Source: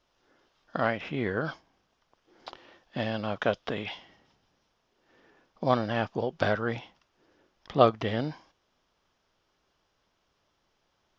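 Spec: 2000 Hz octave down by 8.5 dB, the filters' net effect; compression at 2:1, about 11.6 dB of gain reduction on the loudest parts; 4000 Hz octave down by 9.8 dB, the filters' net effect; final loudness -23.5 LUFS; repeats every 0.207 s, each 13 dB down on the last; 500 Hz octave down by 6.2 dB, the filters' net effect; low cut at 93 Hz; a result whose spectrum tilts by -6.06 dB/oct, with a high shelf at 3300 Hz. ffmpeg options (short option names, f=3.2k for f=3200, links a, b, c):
-af "highpass=93,equalizer=f=500:t=o:g=-7,equalizer=f=2k:t=o:g=-8.5,highshelf=f=3.3k:g=-8.5,equalizer=f=4k:t=o:g=-3.5,acompressor=threshold=-40dB:ratio=2,aecho=1:1:207|414|621:0.224|0.0493|0.0108,volume=19dB"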